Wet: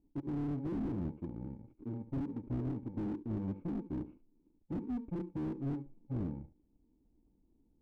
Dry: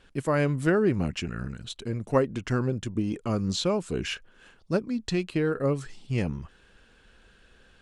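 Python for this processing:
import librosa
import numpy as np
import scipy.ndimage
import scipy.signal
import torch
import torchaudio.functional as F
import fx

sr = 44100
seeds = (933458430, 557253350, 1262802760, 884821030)

p1 = fx.bit_reversed(x, sr, seeds[0], block=64)
p2 = fx.formant_cascade(p1, sr, vowel='u')
p3 = fx.peak_eq(p2, sr, hz=850.0, db=-6.5, octaves=0.43)
p4 = np.sign(p3) * np.maximum(np.abs(p3) - 10.0 ** (-56.0 / 20.0), 0.0)
p5 = p3 + (p4 * librosa.db_to_amplitude(-11.0))
p6 = p5 + 10.0 ** (-14.0 / 20.0) * np.pad(p5, (int(72 * sr / 1000.0), 0))[:len(p5)]
p7 = fx.slew_limit(p6, sr, full_power_hz=4.0)
y = p7 * librosa.db_to_amplitude(2.0)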